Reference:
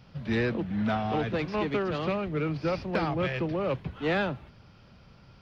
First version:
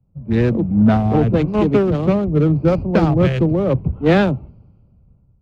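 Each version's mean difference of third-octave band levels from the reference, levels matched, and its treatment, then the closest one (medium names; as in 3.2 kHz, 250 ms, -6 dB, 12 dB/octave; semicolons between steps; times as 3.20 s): 7.5 dB: local Wiener filter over 25 samples; bass shelf 490 Hz +11.5 dB; level rider gain up to 5 dB; three bands expanded up and down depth 70%; trim +2 dB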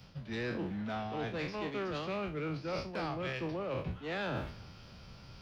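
5.5 dB: spectral sustain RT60 0.42 s; tone controls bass -2 dB, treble +6 dB; reverse; compression 16:1, threshold -39 dBFS, peak gain reduction 18 dB; reverse; three bands expanded up and down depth 40%; trim +5.5 dB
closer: second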